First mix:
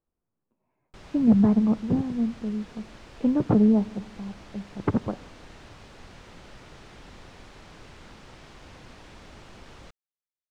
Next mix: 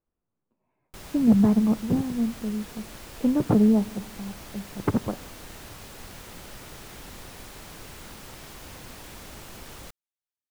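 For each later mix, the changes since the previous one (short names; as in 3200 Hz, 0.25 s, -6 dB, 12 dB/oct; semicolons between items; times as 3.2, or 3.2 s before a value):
background +3.0 dB; master: remove air absorption 110 m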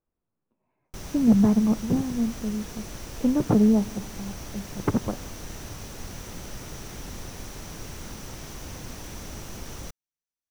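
background: add low shelf 420 Hz +7.5 dB; master: add bell 5900 Hz +11 dB 0.22 oct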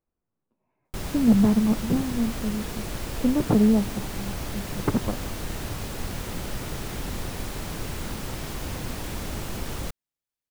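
background +6.5 dB; master: add bell 5900 Hz -11 dB 0.22 oct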